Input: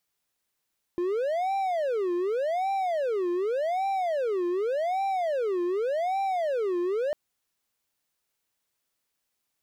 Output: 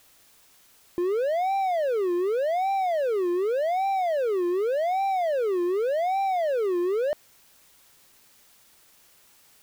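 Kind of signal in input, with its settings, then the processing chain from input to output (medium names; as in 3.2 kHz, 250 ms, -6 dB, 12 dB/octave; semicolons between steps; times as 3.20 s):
siren wail 349–785 Hz 0.86 per s triangle -22.5 dBFS 6.15 s
low-pass 6.9 kHz 12 dB/octave; in parallel at -9.5 dB: word length cut 8-bit, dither triangular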